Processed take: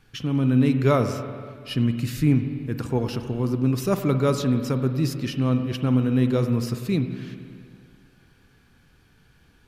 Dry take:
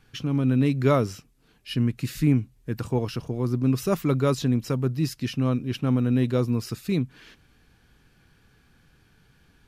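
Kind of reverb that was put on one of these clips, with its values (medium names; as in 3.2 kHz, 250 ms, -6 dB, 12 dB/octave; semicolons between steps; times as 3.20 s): spring tank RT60 2.2 s, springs 47/51 ms, chirp 55 ms, DRR 7.5 dB; trim +1 dB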